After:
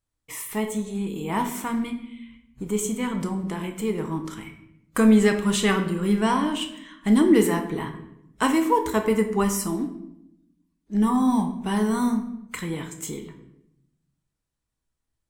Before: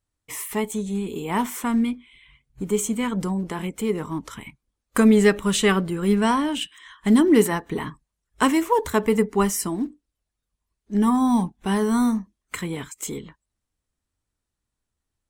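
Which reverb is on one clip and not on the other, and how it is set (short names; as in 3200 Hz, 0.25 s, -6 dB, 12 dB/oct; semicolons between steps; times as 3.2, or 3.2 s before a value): shoebox room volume 230 m³, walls mixed, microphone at 0.63 m; gain -3 dB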